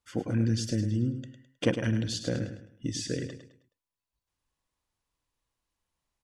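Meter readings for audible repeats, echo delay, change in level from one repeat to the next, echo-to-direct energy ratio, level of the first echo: 3, 0.105 s, -9.0 dB, -8.5 dB, -9.0 dB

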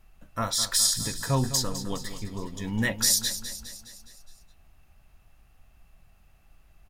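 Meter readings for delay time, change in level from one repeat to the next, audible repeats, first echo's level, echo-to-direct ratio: 0.207 s, -5.0 dB, 5, -11.5 dB, -10.0 dB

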